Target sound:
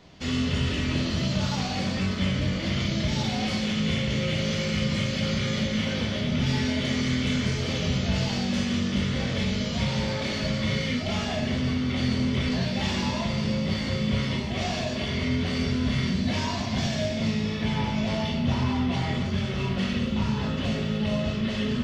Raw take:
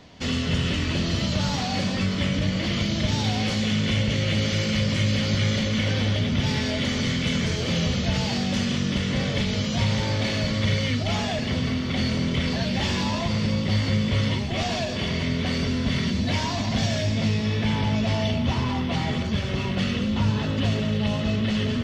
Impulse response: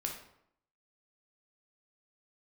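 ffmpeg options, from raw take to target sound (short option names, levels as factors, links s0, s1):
-filter_complex "[1:a]atrim=start_sample=2205[s0];[0:a][s0]afir=irnorm=-1:irlink=0,volume=0.668"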